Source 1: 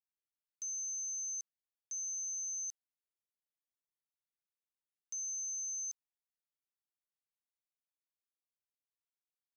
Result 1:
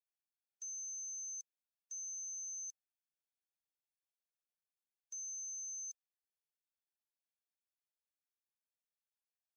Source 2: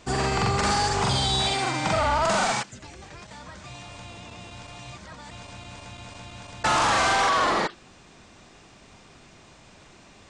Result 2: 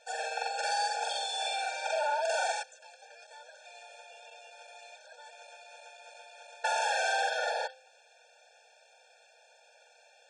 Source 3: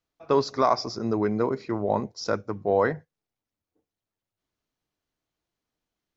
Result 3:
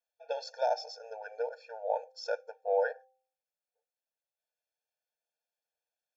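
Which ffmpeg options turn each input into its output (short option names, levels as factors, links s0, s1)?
-af "bandreject=f=259.5:t=h:w=4,bandreject=f=519:t=h:w=4,bandreject=f=778.5:t=h:w=4,afftfilt=real='re*eq(mod(floor(b*sr/1024/460),2),1)':imag='im*eq(mod(floor(b*sr/1024/460),2),1)':win_size=1024:overlap=0.75,volume=0.562"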